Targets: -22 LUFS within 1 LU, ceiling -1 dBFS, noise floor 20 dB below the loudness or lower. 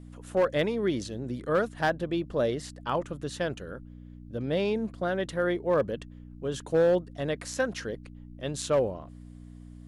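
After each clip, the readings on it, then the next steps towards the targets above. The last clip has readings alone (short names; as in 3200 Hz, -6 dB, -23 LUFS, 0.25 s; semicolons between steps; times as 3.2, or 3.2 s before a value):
clipped 0.5%; flat tops at -17.5 dBFS; hum 60 Hz; harmonics up to 300 Hz; hum level -43 dBFS; loudness -29.5 LUFS; peak -17.5 dBFS; loudness target -22.0 LUFS
-> clip repair -17.5 dBFS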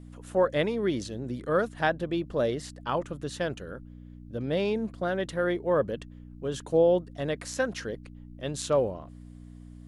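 clipped 0.0%; hum 60 Hz; harmonics up to 300 Hz; hum level -43 dBFS
-> de-hum 60 Hz, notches 5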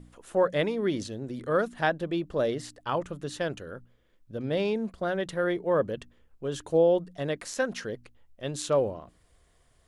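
hum none; loudness -29.5 LUFS; peak -11.5 dBFS; loudness target -22.0 LUFS
-> gain +7.5 dB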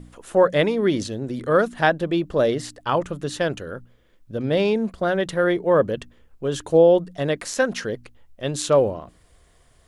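loudness -22.0 LUFS; peak -4.0 dBFS; noise floor -57 dBFS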